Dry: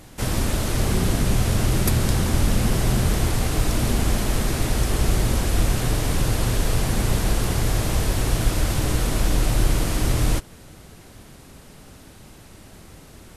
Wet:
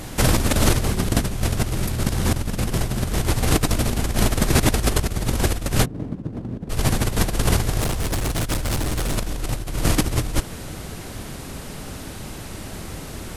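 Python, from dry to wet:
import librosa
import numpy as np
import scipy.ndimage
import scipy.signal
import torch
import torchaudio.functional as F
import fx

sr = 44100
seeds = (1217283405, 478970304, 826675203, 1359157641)

y = fx.over_compress(x, sr, threshold_db=-24.0, ratio=-0.5)
y = fx.bandpass_q(y, sr, hz=220.0, q=1.8, at=(5.84, 6.69), fade=0.02)
y = fx.clip_hard(y, sr, threshold_db=-25.0, at=(7.8, 9.16))
y = y * librosa.db_to_amplitude(5.5)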